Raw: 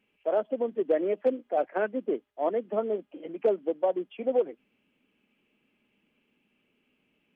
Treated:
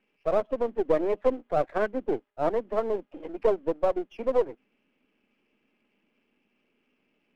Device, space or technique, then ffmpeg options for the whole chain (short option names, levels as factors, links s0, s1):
crystal radio: -af "highpass=200,lowpass=2600,aeval=exprs='if(lt(val(0),0),0.447*val(0),val(0))':c=same,volume=1.58"